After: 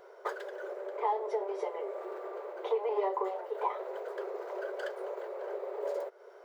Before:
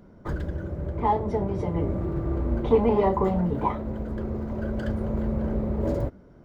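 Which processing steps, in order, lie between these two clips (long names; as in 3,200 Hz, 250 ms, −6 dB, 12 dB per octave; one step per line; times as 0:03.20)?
downward compressor 10 to 1, threshold −32 dBFS, peak gain reduction 18 dB
linear-phase brick-wall high-pass 370 Hz
level +6 dB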